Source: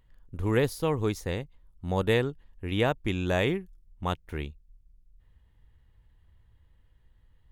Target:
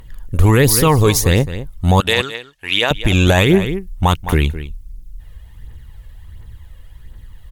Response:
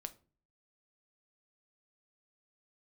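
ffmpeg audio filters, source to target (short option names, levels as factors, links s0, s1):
-filter_complex "[0:a]aemphasis=mode=production:type=cd,aphaser=in_gain=1:out_gain=1:delay=1.9:decay=0.49:speed=1.4:type=triangular,asettb=1/sr,asplit=3[s0][s1][s2];[s0]atrim=end=2.004[s3];[s1]atrim=start=2:end=2.91,asetpts=PTS-STARTPTS,afade=t=in:d=0.004:c=qsin,afade=t=out:st=0.906:d=0.004:c=qsin,bandpass=f=3400:t=q:w=0.75:csg=0[s4];[s2]atrim=start=2.906[s5];[s3][s4]acrossfade=d=0.004:c1=hsin:c2=qsin[s6];[s6][s5]acrossfade=d=0.004:c1=qsin:c2=hsin,asplit=2[s7][s8];[s8]adelay=209.9,volume=0.158,highshelf=f=4000:g=-4.72[s9];[s7][s9]amix=inputs=2:normalize=0,alimiter=level_in=10:limit=0.891:release=50:level=0:latency=1,volume=0.891"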